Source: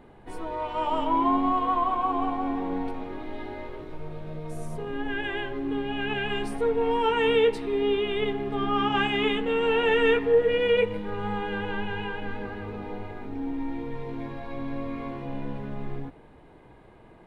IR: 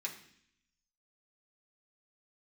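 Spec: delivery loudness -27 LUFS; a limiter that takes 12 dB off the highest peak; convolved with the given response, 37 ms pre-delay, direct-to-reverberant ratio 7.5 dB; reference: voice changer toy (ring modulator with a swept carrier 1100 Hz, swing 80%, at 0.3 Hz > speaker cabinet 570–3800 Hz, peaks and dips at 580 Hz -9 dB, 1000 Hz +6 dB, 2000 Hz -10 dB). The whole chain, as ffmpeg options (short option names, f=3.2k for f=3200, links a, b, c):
-filter_complex "[0:a]alimiter=limit=-22.5dB:level=0:latency=1,asplit=2[a][b];[1:a]atrim=start_sample=2205,adelay=37[c];[b][c]afir=irnorm=-1:irlink=0,volume=-8dB[d];[a][d]amix=inputs=2:normalize=0,aeval=exprs='val(0)*sin(2*PI*1100*n/s+1100*0.8/0.3*sin(2*PI*0.3*n/s))':c=same,highpass=570,equalizer=f=580:t=q:w=4:g=-9,equalizer=f=1k:t=q:w=4:g=6,equalizer=f=2k:t=q:w=4:g=-10,lowpass=f=3.8k:w=0.5412,lowpass=f=3.8k:w=1.3066,volume=8.5dB"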